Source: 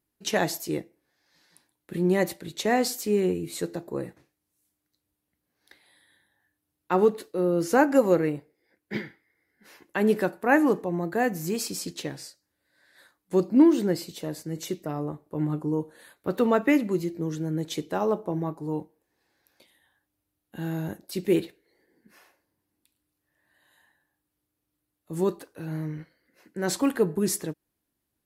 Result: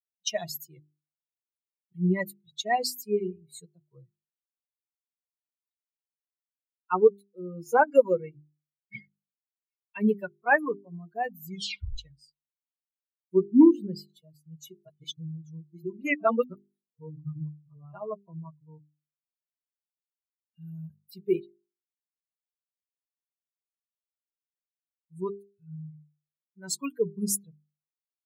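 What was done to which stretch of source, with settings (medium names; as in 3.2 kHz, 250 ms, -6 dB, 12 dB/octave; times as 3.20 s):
11.47 s: tape stop 0.51 s
14.88–17.94 s: reverse
whole clip: expander on every frequency bin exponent 3; hum notches 50/100/150/200/250/300/350/400 Hz; trim +5 dB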